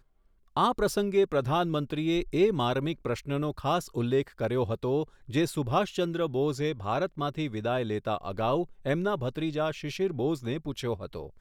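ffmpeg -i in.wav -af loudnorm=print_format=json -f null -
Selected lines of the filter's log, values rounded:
"input_i" : "-29.7",
"input_tp" : "-12.1",
"input_lra" : "3.0",
"input_thresh" : "-39.7",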